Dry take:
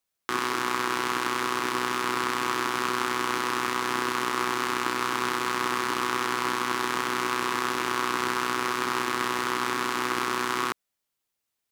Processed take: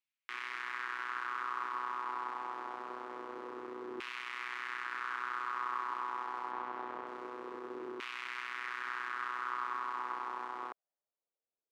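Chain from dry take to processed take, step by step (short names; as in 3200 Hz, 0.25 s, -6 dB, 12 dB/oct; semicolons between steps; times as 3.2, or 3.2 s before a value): 6.51–7.07 tone controls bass +3 dB, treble -8 dB; limiter -16 dBFS, peak gain reduction 7 dB; LFO band-pass saw down 0.25 Hz 390–2600 Hz; gain -2 dB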